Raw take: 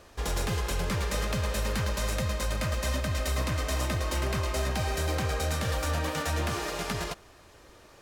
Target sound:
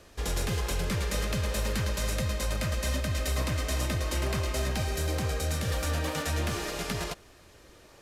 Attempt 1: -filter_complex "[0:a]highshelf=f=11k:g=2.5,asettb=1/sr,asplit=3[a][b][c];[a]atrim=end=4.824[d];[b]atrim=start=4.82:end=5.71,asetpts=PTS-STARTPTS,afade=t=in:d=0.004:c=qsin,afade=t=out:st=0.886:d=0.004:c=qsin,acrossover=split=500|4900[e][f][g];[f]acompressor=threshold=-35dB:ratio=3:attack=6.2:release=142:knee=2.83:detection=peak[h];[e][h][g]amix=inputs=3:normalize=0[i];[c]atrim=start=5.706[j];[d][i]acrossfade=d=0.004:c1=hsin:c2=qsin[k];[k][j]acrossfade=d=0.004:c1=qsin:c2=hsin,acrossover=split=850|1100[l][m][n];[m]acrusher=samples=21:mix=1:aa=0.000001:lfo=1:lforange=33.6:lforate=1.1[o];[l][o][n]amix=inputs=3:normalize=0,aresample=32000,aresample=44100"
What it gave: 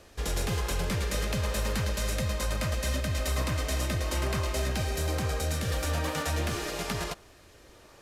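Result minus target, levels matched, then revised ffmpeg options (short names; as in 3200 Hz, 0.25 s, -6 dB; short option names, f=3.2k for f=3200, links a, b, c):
decimation with a swept rate: distortion -13 dB
-filter_complex "[0:a]highshelf=f=11k:g=2.5,asettb=1/sr,asplit=3[a][b][c];[a]atrim=end=4.824[d];[b]atrim=start=4.82:end=5.71,asetpts=PTS-STARTPTS,afade=t=in:d=0.004:c=qsin,afade=t=out:st=0.886:d=0.004:c=qsin,acrossover=split=500|4900[e][f][g];[f]acompressor=threshold=-35dB:ratio=3:attack=6.2:release=142:knee=2.83:detection=peak[h];[e][h][g]amix=inputs=3:normalize=0[i];[c]atrim=start=5.706[j];[d][i]acrossfade=d=0.004:c1=hsin:c2=qsin[k];[k][j]acrossfade=d=0.004:c1=qsin:c2=hsin,acrossover=split=850|1100[l][m][n];[m]acrusher=samples=65:mix=1:aa=0.000001:lfo=1:lforange=104:lforate=1.1[o];[l][o][n]amix=inputs=3:normalize=0,aresample=32000,aresample=44100"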